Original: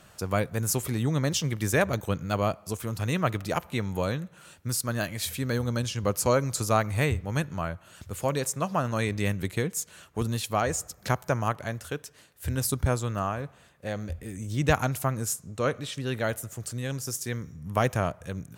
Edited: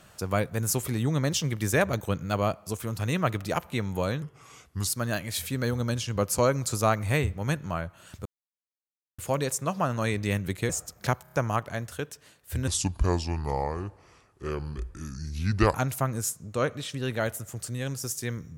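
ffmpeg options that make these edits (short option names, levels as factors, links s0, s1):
-filter_complex "[0:a]asplit=10[s0][s1][s2][s3][s4][s5][s6][s7][s8][s9];[s0]atrim=end=4.224[s10];[s1]atrim=start=4.22:end=4.75,asetpts=PTS-STARTPTS,asetrate=35721,aresample=44100[s11];[s2]atrim=start=4.746:end=8.13,asetpts=PTS-STARTPTS,afade=t=out:st=3.38:d=0.004:c=hsin,apad=pad_dur=0.93[s12];[s3]atrim=start=8.13:end=9.642,asetpts=PTS-STARTPTS,afade=t=in:d=0.004:c=hsin[s13];[s4]atrim=start=10.708:end=11.282[s14];[s5]atrim=start=11.248:end=11.282[s15];[s6]atrim=start=11.248:end=11.282[s16];[s7]atrim=start=11.248:end=12.604[s17];[s8]atrim=start=12.6:end=14.78,asetpts=PTS-STARTPTS,asetrate=31311,aresample=44100[s18];[s9]atrim=start=14.776[s19];[s10][s11]acrossfade=d=0.004:c1=hsin:c2=hsin[s20];[s12][s13]concat=n=2:v=0:a=1[s21];[s20][s21]acrossfade=d=0.004:c1=hsin:c2=hsin[s22];[s22][s14]acrossfade=d=0.004:c1=hsin:c2=hsin[s23];[s23][s15]acrossfade=d=0.004:c1=hsin:c2=hsin[s24];[s24][s16]acrossfade=d=0.004:c1=hsin:c2=hsin[s25];[s25][s17]acrossfade=d=0.004:c1=hsin:c2=hsin[s26];[s26][s18]acrossfade=d=0.004:c1=hsin:c2=hsin[s27];[s27][s19]acrossfade=d=0.004:c1=hsin:c2=hsin"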